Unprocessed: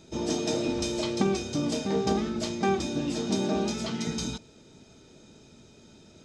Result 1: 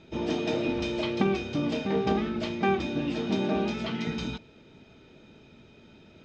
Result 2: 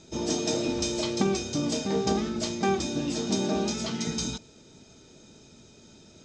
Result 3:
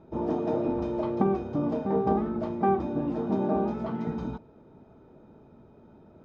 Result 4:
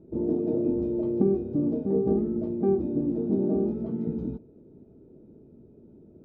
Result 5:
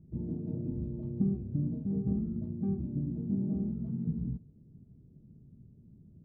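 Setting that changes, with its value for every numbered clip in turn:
synth low-pass, frequency: 2700, 7000, 1000, 390, 150 Hz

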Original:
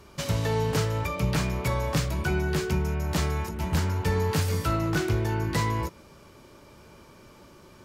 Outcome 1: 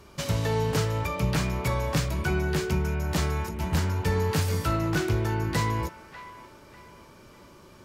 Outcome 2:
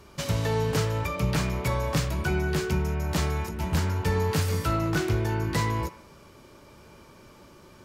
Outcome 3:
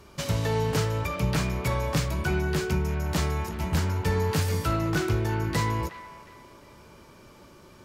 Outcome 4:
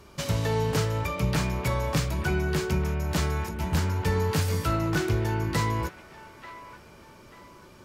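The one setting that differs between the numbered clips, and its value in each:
band-limited delay, time: 595, 96, 362, 888 ms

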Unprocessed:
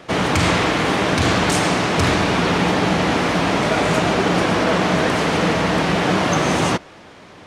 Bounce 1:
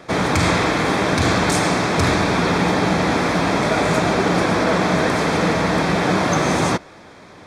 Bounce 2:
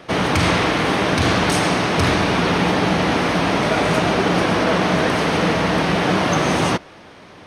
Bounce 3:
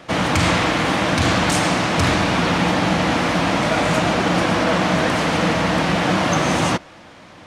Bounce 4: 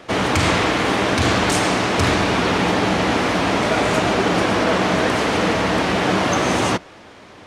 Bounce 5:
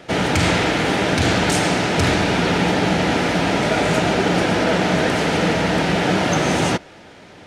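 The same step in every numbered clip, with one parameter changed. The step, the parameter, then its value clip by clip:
notch, frequency: 2900, 7300, 410, 160, 1100 Hz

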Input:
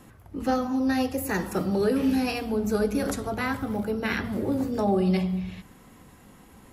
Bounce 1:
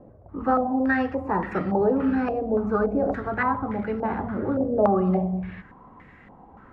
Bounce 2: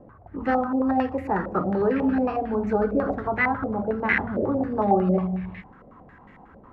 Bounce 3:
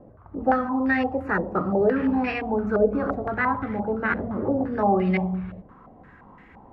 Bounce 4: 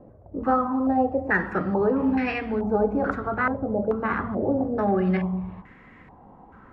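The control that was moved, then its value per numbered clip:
stepped low-pass, rate: 3.5, 11, 5.8, 2.3 Hz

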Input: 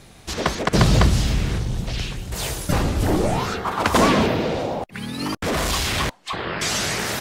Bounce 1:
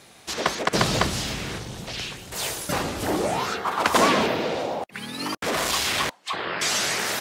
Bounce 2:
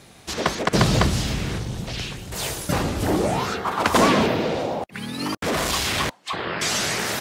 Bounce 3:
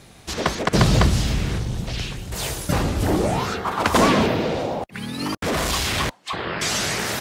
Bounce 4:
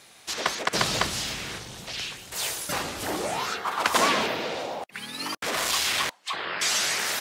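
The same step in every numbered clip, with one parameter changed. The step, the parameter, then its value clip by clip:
HPF, cutoff: 440, 130, 43, 1200 Hz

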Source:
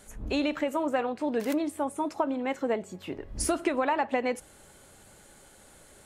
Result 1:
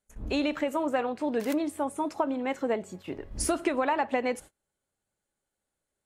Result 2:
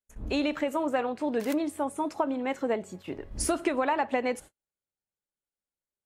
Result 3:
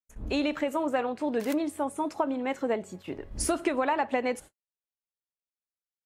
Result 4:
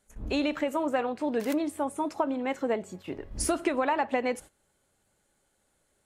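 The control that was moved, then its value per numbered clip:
gate, range: -31, -45, -58, -18 dB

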